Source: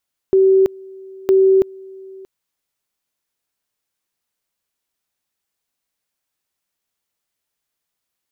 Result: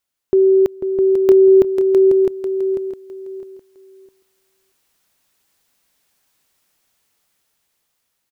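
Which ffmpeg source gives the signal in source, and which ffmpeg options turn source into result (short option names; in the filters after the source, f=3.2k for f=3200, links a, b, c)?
-f lavfi -i "aevalsrc='pow(10,(-8.5-25*gte(mod(t,0.96),0.33))/20)*sin(2*PI*383*t)':d=1.92:s=44100"
-filter_complex "[0:a]asplit=2[a][b];[b]aecho=0:1:494:0.335[c];[a][c]amix=inputs=2:normalize=0,dynaudnorm=f=560:g=7:m=12.5dB,asplit=2[d][e];[e]aecho=0:1:658|1316|1974:0.531|0.122|0.0281[f];[d][f]amix=inputs=2:normalize=0"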